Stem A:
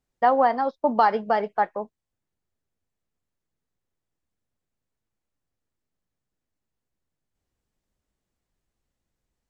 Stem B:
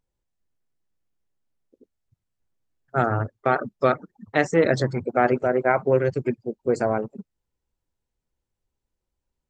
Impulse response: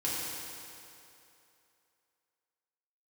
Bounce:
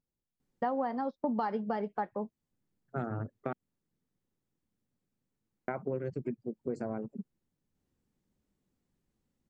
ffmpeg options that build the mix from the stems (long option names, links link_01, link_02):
-filter_complex "[0:a]bandreject=frequency=660:width=12,adelay=400,volume=-4dB[link_01];[1:a]volume=-13.5dB,asplit=3[link_02][link_03][link_04];[link_02]atrim=end=3.53,asetpts=PTS-STARTPTS,afade=type=out:start_time=3.526:duration=0.004:curve=hsin[link_05];[link_03]atrim=start=3.53:end=5.68,asetpts=PTS-STARTPTS,volume=0[link_06];[link_04]atrim=start=5.68,asetpts=PTS-STARTPTS,afade=type=in:duration=0.004:curve=hsin[link_07];[link_05][link_06][link_07]concat=n=3:v=0:a=1[link_08];[link_01][link_08]amix=inputs=2:normalize=0,equalizer=frequency=210:width=0.68:gain=12,acompressor=threshold=-33dB:ratio=3"